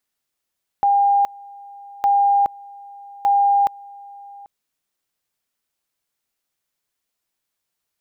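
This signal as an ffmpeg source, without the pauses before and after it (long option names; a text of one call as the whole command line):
ffmpeg -f lavfi -i "aevalsrc='pow(10,(-12.5-24*gte(mod(t,1.21),0.42))/20)*sin(2*PI*804*t)':duration=3.63:sample_rate=44100" out.wav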